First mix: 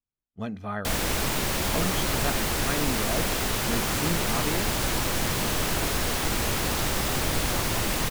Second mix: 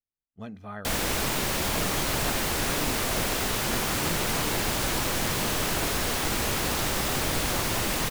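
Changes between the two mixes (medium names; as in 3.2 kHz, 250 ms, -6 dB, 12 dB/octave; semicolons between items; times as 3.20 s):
speech -6.5 dB; background: add bass shelf 130 Hz -4 dB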